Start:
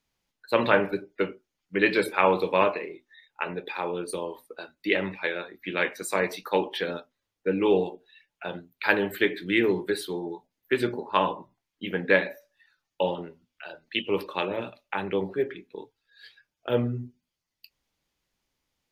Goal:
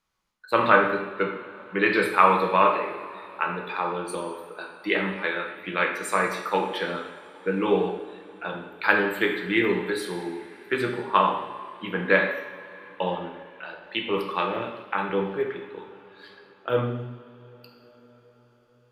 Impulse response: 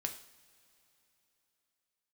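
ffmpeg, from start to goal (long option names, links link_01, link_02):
-filter_complex "[0:a]equalizer=frequency=1200:width=1.9:gain=10[link_01];[1:a]atrim=start_sample=2205,asetrate=25578,aresample=44100[link_02];[link_01][link_02]afir=irnorm=-1:irlink=0,volume=-3.5dB"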